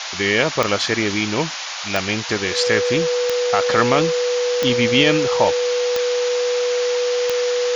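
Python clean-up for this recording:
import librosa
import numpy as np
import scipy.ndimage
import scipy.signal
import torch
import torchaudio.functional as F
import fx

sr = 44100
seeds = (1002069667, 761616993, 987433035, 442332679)

y = fx.fix_declick_ar(x, sr, threshold=10.0)
y = fx.notch(y, sr, hz=490.0, q=30.0)
y = fx.noise_reduce(y, sr, print_start_s=1.44, print_end_s=1.94, reduce_db=30.0)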